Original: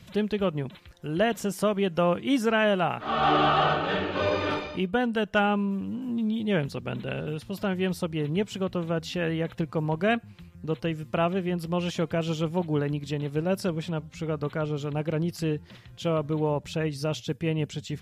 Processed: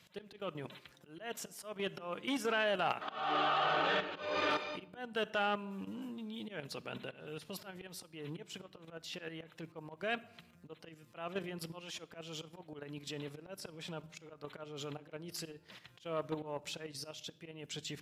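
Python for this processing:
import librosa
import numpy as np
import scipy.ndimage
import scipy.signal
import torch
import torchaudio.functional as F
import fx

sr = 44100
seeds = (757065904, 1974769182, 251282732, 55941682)

y = fx.highpass(x, sr, hz=700.0, slope=6)
y = fx.level_steps(y, sr, step_db=11)
y = fx.auto_swell(y, sr, attack_ms=270.0)
y = fx.room_shoebox(y, sr, seeds[0], volume_m3=3500.0, walls='furnished', distance_m=0.49)
y = fx.transformer_sat(y, sr, knee_hz=1300.0)
y = y * librosa.db_to_amplitude(1.5)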